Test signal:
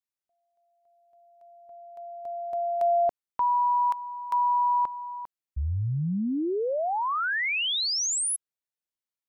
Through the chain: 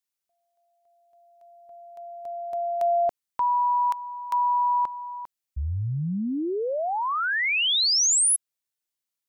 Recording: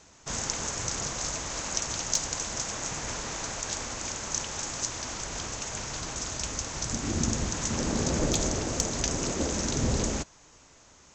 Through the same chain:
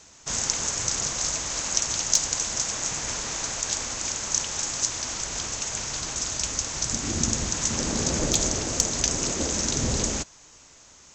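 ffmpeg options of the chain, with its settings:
-af "highshelf=f=2.6k:g=7.5"

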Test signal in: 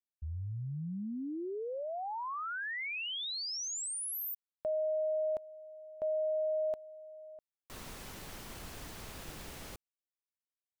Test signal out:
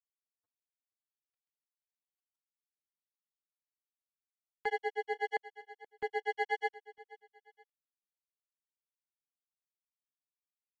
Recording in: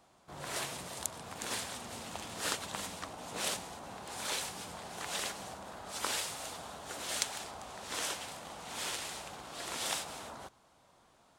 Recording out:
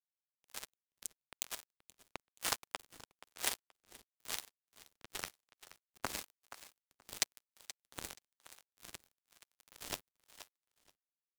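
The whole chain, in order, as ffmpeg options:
-filter_complex "[0:a]flanger=delay=4.3:depth=7.7:regen=17:speed=0.85:shape=triangular,acrusher=bits=4:mix=0:aa=0.5,aeval=exprs='val(0)*sin(2*PI*190*n/s)':c=same,asplit=2[a][b];[b]aecho=0:1:477|954:0.141|0.0367[c];[a][c]amix=inputs=2:normalize=0,acrossover=split=470[d][e];[d]aeval=exprs='val(0)*(1-0.5/2+0.5/2*cos(2*PI*1*n/s))':c=same[f];[e]aeval=exprs='val(0)*(1-0.5/2-0.5/2*cos(2*PI*1*n/s))':c=same[g];[f][g]amix=inputs=2:normalize=0,volume=10.5dB"

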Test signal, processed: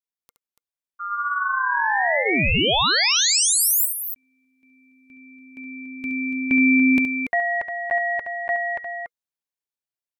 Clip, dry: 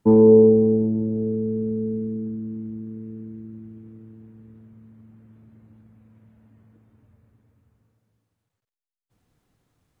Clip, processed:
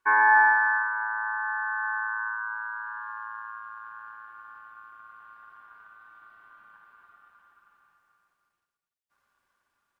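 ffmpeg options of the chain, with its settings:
-af "highpass=f=91:w=0.5412,highpass=f=91:w=1.3066,bandreject=f=820:w=19,dynaudnorm=f=300:g=11:m=8dB,aeval=exprs='val(0)*sin(2*PI*1300*n/s)':c=same,aecho=1:1:69.97|285.7:0.398|0.355,volume=-4.5dB"

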